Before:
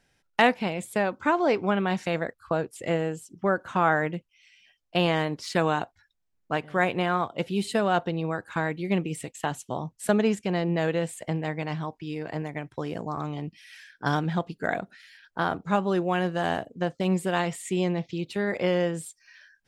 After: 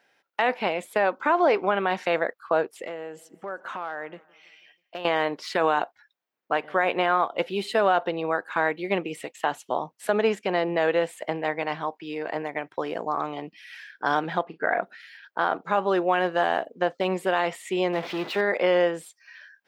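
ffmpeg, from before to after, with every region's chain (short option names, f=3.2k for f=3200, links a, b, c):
-filter_complex "[0:a]asettb=1/sr,asplit=3[a][b][c];[a]atrim=end=2.834[d];[b]atrim=start=2.83:end=5.05,asetpts=PTS-STARTPTS,afade=t=in:d=0.004:c=qsin,afade=t=out:st=2.216:d=0.004:c=qsin,acompressor=threshold=-36dB:ratio=5:attack=3.2:release=140:knee=1:detection=peak,aecho=1:1:162|324|486|648:0.0631|0.036|0.0205|0.0117,atrim=end_sample=97902,asoftclip=type=hard:threshold=-29.5dB[e];[c]atrim=start=5.046[f];[d][e]acrossfade=d=0.004:c1=hsin:c2=qsin[g];[g][f]acrossfade=d=0.004:c1=qsin:c2=hsin,asettb=1/sr,asplit=3[h][i][j];[h]atrim=end=14.434[k];[i]atrim=start=14.43:end=14.83,asetpts=PTS-STARTPTS,afade=t=in:d=0.004:c=qsin,afade=t=out:st=0.396:d=0.004:c=qsin,lowpass=5.4k,highshelf=f=2.6k:t=q:w=1.5:g=-10,asplit=2[l][m];[m]adelay=37,volume=-12dB[n];[l][n]amix=inputs=2:normalize=0,atrim=end_sample=17640[o];[j]atrim=start=14.826[p];[k][o]acrossfade=d=0.004:c1=hsin:c2=qsin[q];[q][p]acrossfade=d=0.004:c1=qsin:c2=hsin,asettb=1/sr,asplit=3[r][s][t];[r]atrim=end=17.934[u];[s]atrim=start=17.93:end=18.41,asetpts=PTS-STARTPTS,afade=t=in:d=0.004:c=qsin,afade=t=out:st=0.476:d=0.004:c=qsin,aeval=exprs='val(0)+0.5*0.0237*sgn(val(0))':c=same,aeval=exprs='val(0)+0.00224*sin(2*PI*2000*n/s)':c=same,adynamicsmooth=sensitivity=7.5:basefreq=4.4k[v];[t]atrim=start=18.406[w];[u][v]acrossfade=d=0.004:c1=hsin:c2=qsin[x];[x][w]acrossfade=d=0.004:c1=qsin:c2=hsin,highpass=460,equalizer=f=8.5k:w=0.62:g=-14,alimiter=limit=-18.5dB:level=0:latency=1:release=56,volume=7.5dB"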